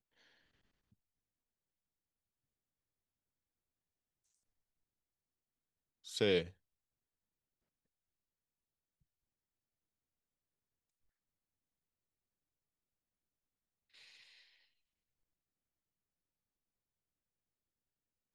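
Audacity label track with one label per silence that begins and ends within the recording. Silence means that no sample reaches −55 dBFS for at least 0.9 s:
6.510000	13.950000	silence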